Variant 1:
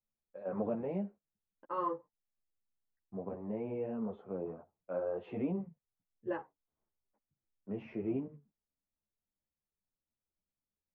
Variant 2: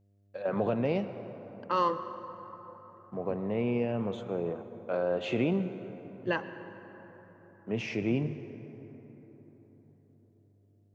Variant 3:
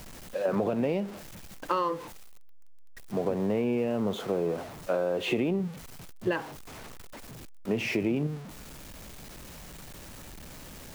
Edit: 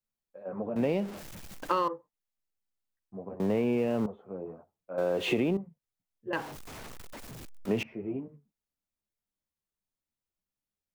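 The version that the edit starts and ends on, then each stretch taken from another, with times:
1
0.76–1.88 s: from 3
3.40–4.06 s: from 3
4.98–5.57 s: from 3
6.33–7.83 s: from 3
not used: 2

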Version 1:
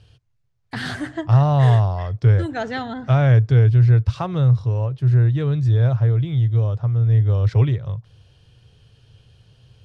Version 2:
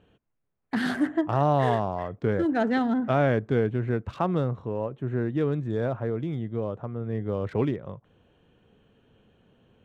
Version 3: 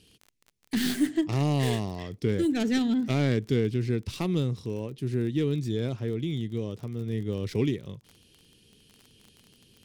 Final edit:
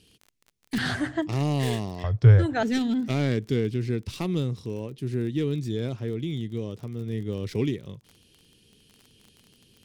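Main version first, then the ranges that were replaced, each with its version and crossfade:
3
0.78–1.22 s: from 1
2.04–2.63 s: from 1
not used: 2

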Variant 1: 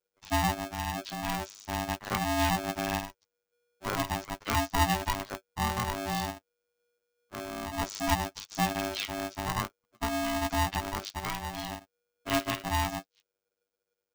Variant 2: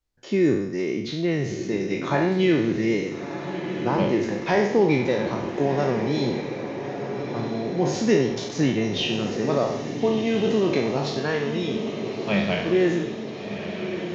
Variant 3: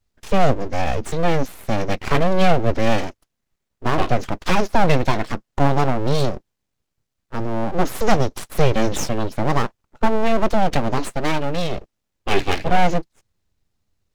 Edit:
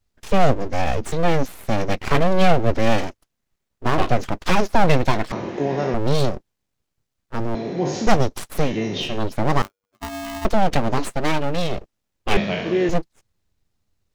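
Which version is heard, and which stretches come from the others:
3
5.32–5.94 s: from 2
7.55–8.07 s: from 2
8.65–9.11 s: from 2, crossfade 0.24 s
9.62–10.45 s: from 1
12.37–12.89 s: from 2

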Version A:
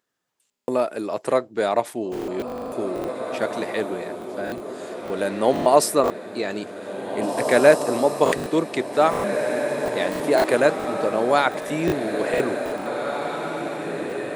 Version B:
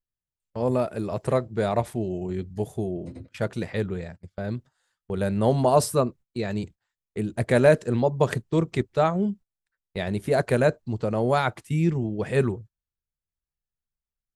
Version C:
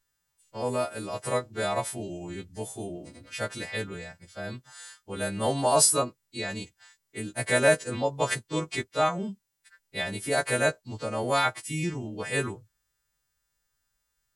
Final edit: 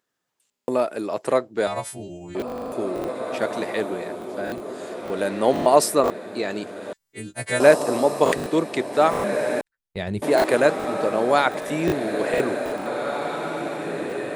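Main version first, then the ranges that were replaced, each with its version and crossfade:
A
1.67–2.35 s: from C
6.93–7.60 s: from C
9.61–10.22 s: from B

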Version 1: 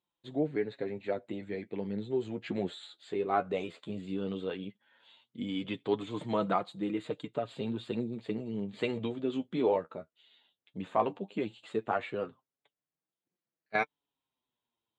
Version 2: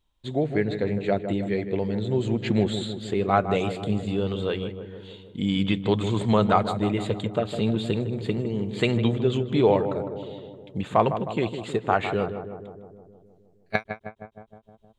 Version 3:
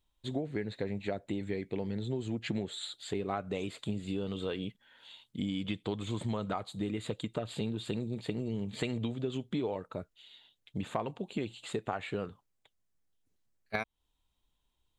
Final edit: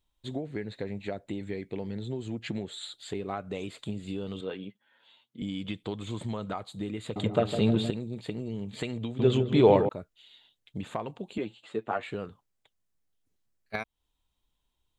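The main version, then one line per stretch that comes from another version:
3
4.41–5.42 s: from 1
7.16–7.90 s: from 2
9.19–9.89 s: from 2
11.38–12.03 s: from 1

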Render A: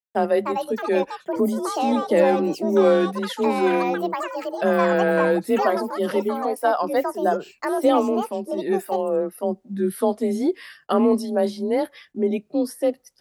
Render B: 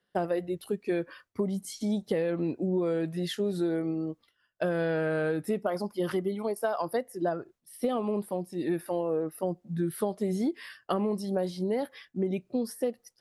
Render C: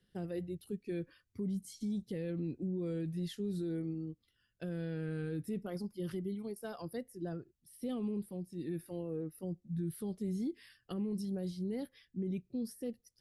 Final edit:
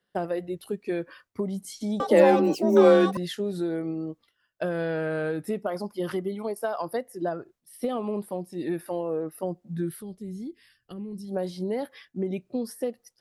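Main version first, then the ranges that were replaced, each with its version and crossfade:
B
2.00–3.17 s: from A
9.98–11.31 s: from C, crossfade 0.10 s

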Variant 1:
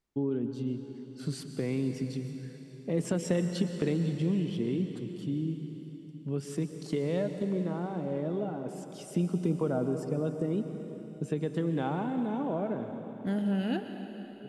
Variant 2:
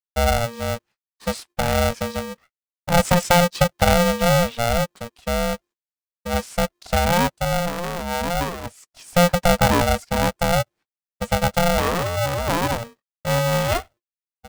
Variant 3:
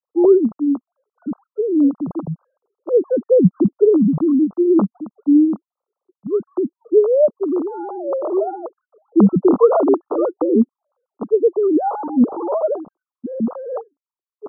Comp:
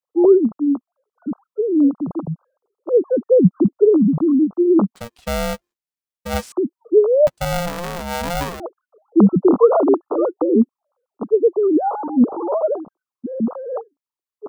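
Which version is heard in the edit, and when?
3
4.95–6.52 s: from 2
7.27–8.60 s: from 2
not used: 1

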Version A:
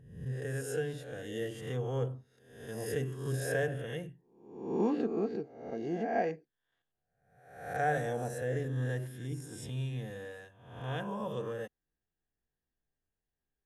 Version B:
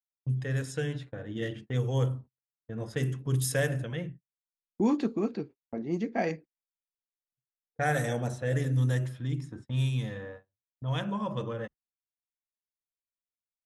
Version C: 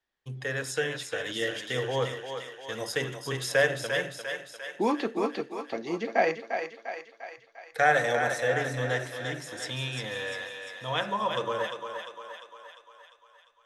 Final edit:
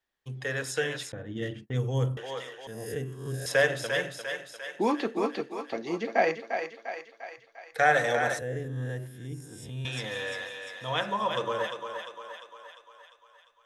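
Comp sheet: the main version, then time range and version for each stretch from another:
C
1.12–2.17 s: from B
2.67–3.46 s: from A
8.39–9.85 s: from A

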